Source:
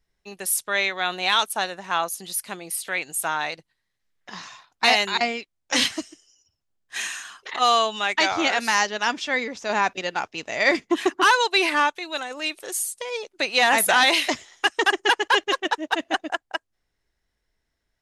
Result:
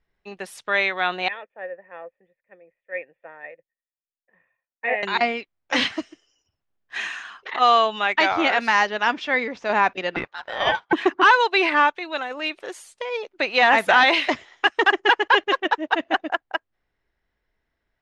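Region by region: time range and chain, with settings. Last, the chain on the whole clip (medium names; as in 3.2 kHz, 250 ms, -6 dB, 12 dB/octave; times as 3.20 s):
1.28–5.03 s: cascade formant filter e + distance through air 87 m + three bands expanded up and down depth 100%
10.16–10.93 s: ring modulator 1.2 kHz + distance through air 58 m
whole clip: low-pass 2.7 kHz 12 dB/octave; bass shelf 250 Hz -4 dB; trim +3.5 dB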